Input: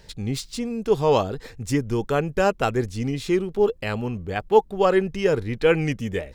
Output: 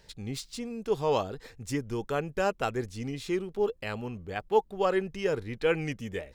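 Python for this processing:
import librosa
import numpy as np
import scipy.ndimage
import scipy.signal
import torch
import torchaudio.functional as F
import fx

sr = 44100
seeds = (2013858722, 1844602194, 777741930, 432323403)

y = fx.low_shelf(x, sr, hz=340.0, db=-4.0)
y = F.gain(torch.from_numpy(y), -6.5).numpy()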